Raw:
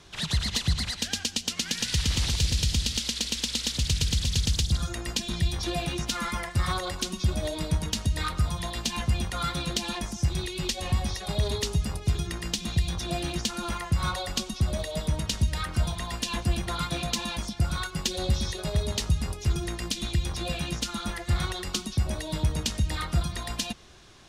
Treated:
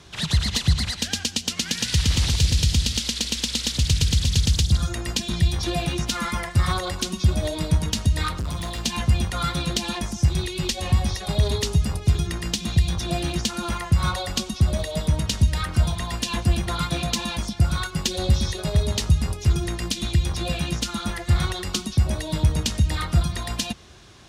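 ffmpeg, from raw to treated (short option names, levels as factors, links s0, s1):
-filter_complex "[0:a]asettb=1/sr,asplit=3[s0][s1][s2];[s0]atrim=end=8.364[s3];[s1]atrim=start=8.36:end=8.83,asetpts=PTS-STARTPTS,afade=t=in:d=0.004:c=qsin,afade=t=out:st=0.466:d=0.004:c=qsin,asoftclip=type=hard:threshold=0.0299[s4];[s2]atrim=start=8.826[s5];[s3][s4]acrossfade=d=0.004:c1=hsin:c2=qsin[s6];[s6][s5]acrossfade=d=0.004:c1=qsin:c2=hsin,highpass=59,lowshelf=f=130:g=6.5,volume=1.5"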